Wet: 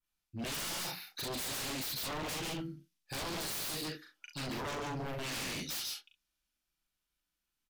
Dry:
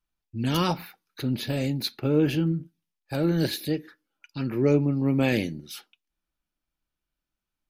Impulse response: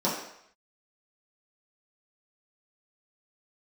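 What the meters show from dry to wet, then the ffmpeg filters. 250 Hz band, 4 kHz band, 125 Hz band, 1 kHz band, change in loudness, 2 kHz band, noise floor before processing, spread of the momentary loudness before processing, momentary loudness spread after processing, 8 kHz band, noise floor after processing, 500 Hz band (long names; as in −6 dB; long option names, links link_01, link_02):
−18.0 dB, −3.0 dB, −18.0 dB, −6.5 dB, −11.5 dB, −5.0 dB, below −85 dBFS, 15 LU, 8 LU, +5.0 dB, below −85 dBFS, −15.5 dB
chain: -filter_complex "[0:a]tiltshelf=frequency=1400:gain=-5,asplit=2[link_01][link_02];[link_02]aecho=0:1:141:0.501[link_03];[link_01][link_03]amix=inputs=2:normalize=0,aresample=32000,aresample=44100,asplit=2[link_04][link_05];[link_05]aecho=0:1:39|66:0.668|0.299[link_06];[link_04][link_06]amix=inputs=2:normalize=0,alimiter=limit=-19dB:level=0:latency=1:release=129,adynamicequalizer=threshold=0.00447:dfrequency=5200:dqfactor=0.91:tfrequency=5200:tqfactor=0.91:attack=5:release=100:ratio=0.375:range=4:mode=boostabove:tftype=bell,aeval=exprs='0.0316*(abs(mod(val(0)/0.0316+3,4)-2)-1)':channel_layout=same,volume=-3.5dB"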